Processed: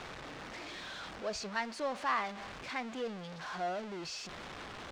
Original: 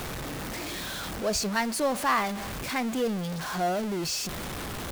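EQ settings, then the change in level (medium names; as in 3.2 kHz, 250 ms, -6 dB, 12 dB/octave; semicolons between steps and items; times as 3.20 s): distance through air 130 m; bass shelf 350 Hz -11.5 dB; -5.5 dB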